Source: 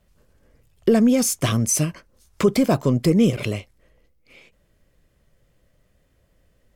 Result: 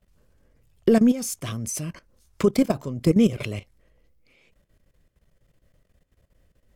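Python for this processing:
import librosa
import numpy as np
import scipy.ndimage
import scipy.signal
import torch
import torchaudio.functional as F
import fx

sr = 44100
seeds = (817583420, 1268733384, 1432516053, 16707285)

y = fx.low_shelf(x, sr, hz=180.0, db=3.0)
y = fx.level_steps(y, sr, step_db=15)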